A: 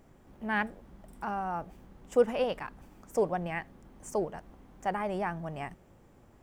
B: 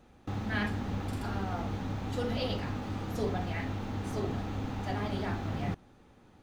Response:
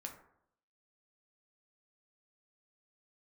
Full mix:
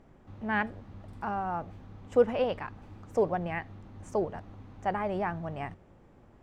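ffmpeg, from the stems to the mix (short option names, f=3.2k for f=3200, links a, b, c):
-filter_complex "[0:a]highshelf=f=5.9k:g=-10.5,volume=1.5dB[a];[1:a]equalizer=f=93:w=6.4:g=13,volume=-19dB[b];[a][b]amix=inputs=2:normalize=0,highshelf=f=9.1k:g=-10.5"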